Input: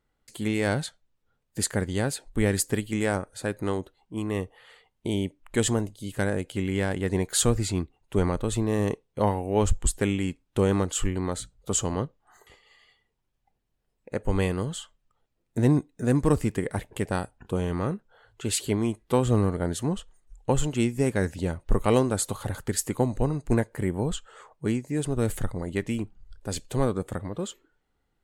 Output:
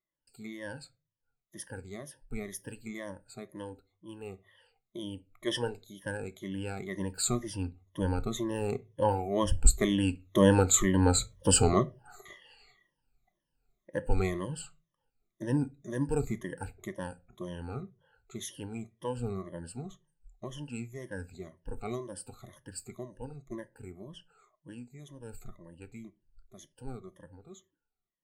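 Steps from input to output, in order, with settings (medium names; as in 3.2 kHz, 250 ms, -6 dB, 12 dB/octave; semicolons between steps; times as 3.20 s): drifting ripple filter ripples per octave 1.2, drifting -2 Hz, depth 24 dB; Doppler pass-by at 11.42 s, 7 m/s, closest 6.2 m; on a send at -12.5 dB: reverberation RT60 0.30 s, pre-delay 3 ms; on the sum: time-frequency box 5.47–5.84 s, 320–5700 Hz +7 dB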